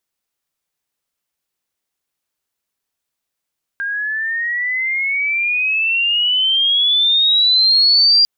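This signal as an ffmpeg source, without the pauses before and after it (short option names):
-f lavfi -i "aevalsrc='pow(10,(-19+11*t/4.45)/20)*sin(2*PI*1600*4.45/log(4800/1600)*(exp(log(4800/1600)*t/4.45)-1))':d=4.45:s=44100"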